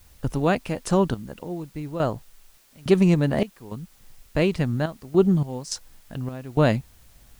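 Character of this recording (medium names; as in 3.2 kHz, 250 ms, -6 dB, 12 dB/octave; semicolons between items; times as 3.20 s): random-step tremolo, depth 95%; a quantiser's noise floor 10-bit, dither triangular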